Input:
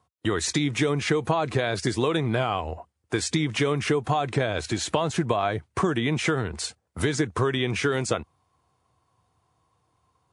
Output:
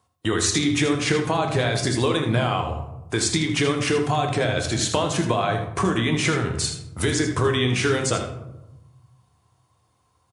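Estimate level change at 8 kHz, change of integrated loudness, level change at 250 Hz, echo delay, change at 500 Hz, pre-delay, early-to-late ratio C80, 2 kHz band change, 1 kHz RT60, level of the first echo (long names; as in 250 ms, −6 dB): +7.0 dB, +3.5 dB, +3.0 dB, 79 ms, +2.0 dB, 10 ms, 10.0 dB, +3.5 dB, 0.85 s, −9.5 dB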